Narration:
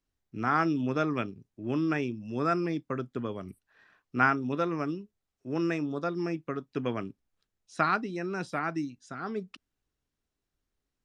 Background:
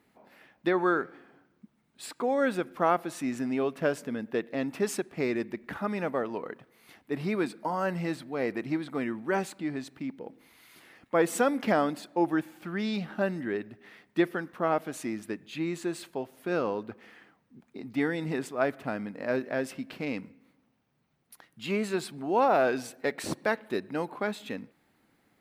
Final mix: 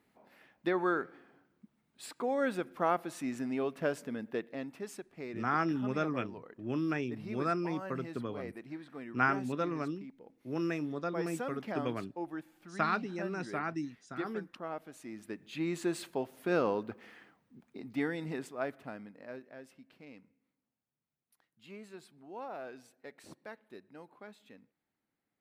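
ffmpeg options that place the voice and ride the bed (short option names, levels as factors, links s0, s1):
-filter_complex "[0:a]adelay=5000,volume=0.596[s0];[1:a]volume=2.51,afade=t=out:st=4.28:d=0.53:silence=0.375837,afade=t=in:st=15.03:d=0.86:silence=0.223872,afade=t=out:st=16.73:d=2.75:silence=0.112202[s1];[s0][s1]amix=inputs=2:normalize=0"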